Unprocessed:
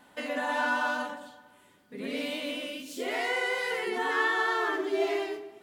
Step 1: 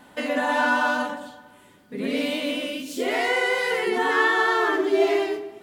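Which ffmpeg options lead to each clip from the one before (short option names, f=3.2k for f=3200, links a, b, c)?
-af "lowshelf=f=420:g=4.5,volume=6dB"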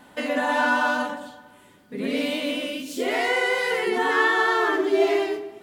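-af anull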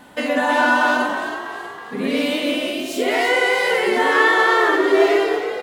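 -filter_complex "[0:a]asplit=7[a][b][c][d][e][f][g];[b]adelay=322,afreqshift=53,volume=-10dB[h];[c]adelay=644,afreqshift=106,volume=-15.2dB[i];[d]adelay=966,afreqshift=159,volume=-20.4dB[j];[e]adelay=1288,afreqshift=212,volume=-25.6dB[k];[f]adelay=1610,afreqshift=265,volume=-30.8dB[l];[g]adelay=1932,afreqshift=318,volume=-36dB[m];[a][h][i][j][k][l][m]amix=inputs=7:normalize=0,volume=5dB"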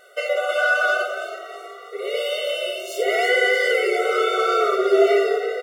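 -af "afftfilt=real='re*eq(mod(floor(b*sr/1024/380),2),1)':imag='im*eq(mod(floor(b*sr/1024/380),2),1)':win_size=1024:overlap=0.75"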